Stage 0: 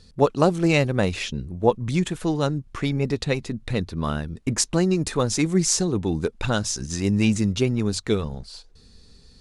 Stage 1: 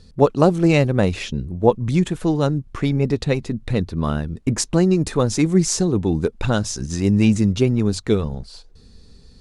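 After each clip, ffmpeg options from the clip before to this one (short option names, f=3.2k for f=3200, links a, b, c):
-af "tiltshelf=f=970:g=3,volume=2dB"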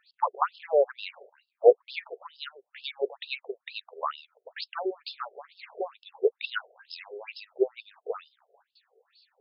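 -af "afftfilt=real='re*between(b*sr/1024,520*pow(3800/520,0.5+0.5*sin(2*PI*2.2*pts/sr))/1.41,520*pow(3800/520,0.5+0.5*sin(2*PI*2.2*pts/sr))*1.41)':imag='im*between(b*sr/1024,520*pow(3800/520,0.5+0.5*sin(2*PI*2.2*pts/sr))/1.41,520*pow(3800/520,0.5+0.5*sin(2*PI*2.2*pts/sr))*1.41)':win_size=1024:overlap=0.75"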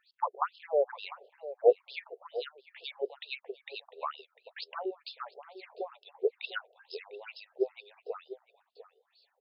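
-filter_complex "[0:a]asplit=2[a][b];[b]adelay=699.7,volume=-14dB,highshelf=f=4k:g=-15.7[c];[a][c]amix=inputs=2:normalize=0,volume=-5dB"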